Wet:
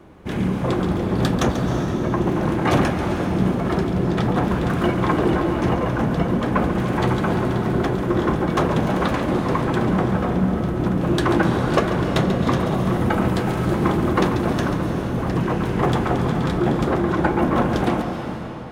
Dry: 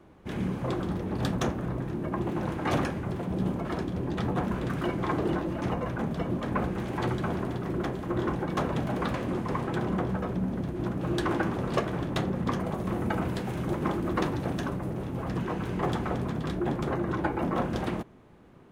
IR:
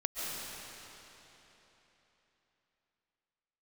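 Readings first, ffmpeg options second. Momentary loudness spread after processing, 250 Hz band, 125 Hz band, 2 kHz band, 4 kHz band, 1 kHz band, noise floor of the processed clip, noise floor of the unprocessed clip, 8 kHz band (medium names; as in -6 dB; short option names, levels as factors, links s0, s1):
3 LU, +10.0 dB, +9.5 dB, +10.0 dB, +9.5 dB, +10.0 dB, -26 dBFS, -44 dBFS, +9.5 dB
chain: -filter_complex "[0:a]asplit=2[s0][s1];[1:a]atrim=start_sample=2205,asetrate=48510,aresample=44100,adelay=139[s2];[s1][s2]afir=irnorm=-1:irlink=0,volume=0.355[s3];[s0][s3]amix=inputs=2:normalize=0,volume=2.66"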